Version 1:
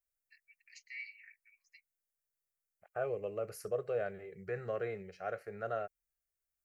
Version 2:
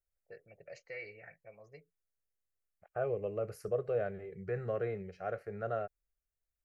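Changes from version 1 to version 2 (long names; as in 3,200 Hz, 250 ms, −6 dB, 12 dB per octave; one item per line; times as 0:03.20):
first voice: remove Chebyshev high-pass filter 2,000 Hz, order 4
master: add spectral tilt −2 dB per octave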